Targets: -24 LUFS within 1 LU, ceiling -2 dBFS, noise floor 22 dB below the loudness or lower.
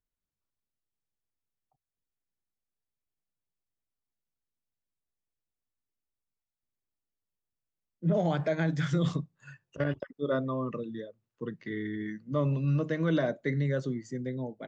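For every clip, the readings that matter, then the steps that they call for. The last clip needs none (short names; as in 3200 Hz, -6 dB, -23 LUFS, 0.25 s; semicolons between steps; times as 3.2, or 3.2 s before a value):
loudness -31.5 LUFS; peak -17.0 dBFS; loudness target -24.0 LUFS
-> gain +7.5 dB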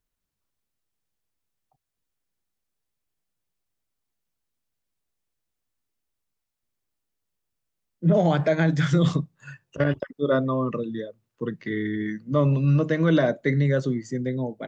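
loudness -24.0 LUFS; peak -9.5 dBFS; noise floor -82 dBFS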